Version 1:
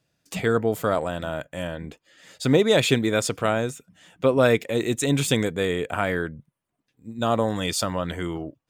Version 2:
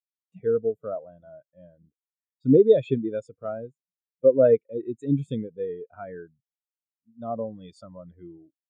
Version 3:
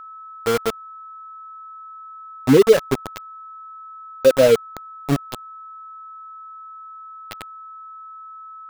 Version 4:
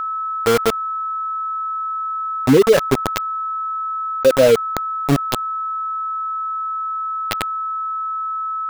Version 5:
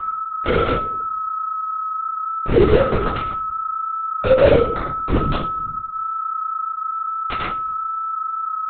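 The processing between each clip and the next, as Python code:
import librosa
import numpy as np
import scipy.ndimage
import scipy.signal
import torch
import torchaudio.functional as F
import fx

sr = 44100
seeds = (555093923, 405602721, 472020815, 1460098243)

y1 = fx.spectral_expand(x, sr, expansion=2.5)
y2 = np.where(np.abs(y1) >= 10.0 ** (-20.5 / 20.0), y1, 0.0)
y2 = y2 + 10.0 ** (-40.0 / 20.0) * np.sin(2.0 * np.pi * 1300.0 * np.arange(len(y2)) / sr)
y2 = y2 * 10.0 ** (4.0 / 20.0)
y3 = fx.env_flatten(y2, sr, amount_pct=50)
y3 = y3 * 10.0 ** (-1.0 / 20.0)
y4 = fx.room_shoebox(y3, sr, seeds[0], volume_m3=63.0, walls='mixed', distance_m=1.9)
y4 = fx.lpc_vocoder(y4, sr, seeds[1], excitation='whisper', order=10)
y4 = y4 * 10.0 ** (-10.5 / 20.0)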